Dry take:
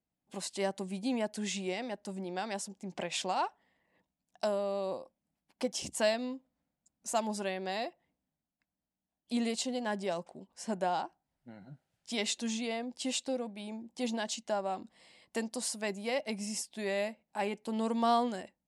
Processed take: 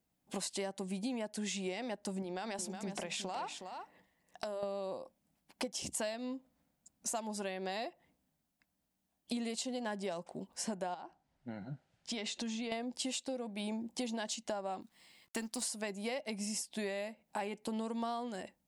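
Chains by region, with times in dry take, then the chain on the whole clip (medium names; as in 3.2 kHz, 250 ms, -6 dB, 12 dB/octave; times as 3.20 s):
2.22–4.63 s: hum notches 50/100/150/200/250/300 Hz + compression 4:1, threshold -42 dBFS + delay 366 ms -9 dB
10.94–12.72 s: distance through air 72 m + compression 12:1, threshold -40 dBFS
14.81–15.62 s: companding laws mixed up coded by A + peaking EQ 540 Hz -8.5 dB 0.78 oct
whole clip: treble shelf 9.4 kHz +4 dB; compression 10:1, threshold -42 dBFS; trim +6.5 dB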